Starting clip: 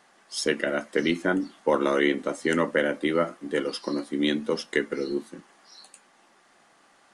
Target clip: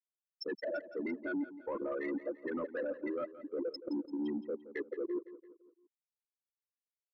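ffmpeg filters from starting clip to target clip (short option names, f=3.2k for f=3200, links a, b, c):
-filter_complex "[0:a]highpass=120,bandreject=f=60:t=h:w=6,bandreject=f=120:t=h:w=6,bandreject=f=180:t=h:w=6,afftfilt=real='re*gte(hypot(re,im),0.224)':imag='im*gte(hypot(re,im),0.224)':win_size=1024:overlap=0.75,lowshelf=f=470:g=-6,areverse,acompressor=threshold=-36dB:ratio=6,areverse,alimiter=level_in=11.5dB:limit=-24dB:level=0:latency=1:release=11,volume=-11.5dB,asoftclip=type=tanh:threshold=-35dB,asplit=2[a][b];[b]aecho=0:1:170|340|510|680:0.178|0.0854|0.041|0.0197[c];[a][c]amix=inputs=2:normalize=0,volume=7dB"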